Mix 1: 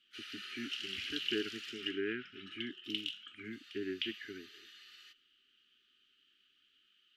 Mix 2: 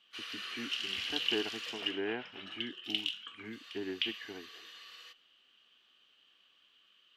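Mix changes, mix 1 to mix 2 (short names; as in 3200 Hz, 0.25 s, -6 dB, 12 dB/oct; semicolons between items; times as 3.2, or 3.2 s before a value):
background +4.5 dB; master: remove brick-wall FIR band-stop 440–1200 Hz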